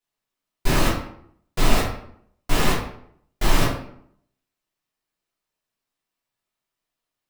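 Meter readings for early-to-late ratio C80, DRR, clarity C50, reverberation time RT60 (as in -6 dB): 7.5 dB, -7.5 dB, 3.5 dB, 0.65 s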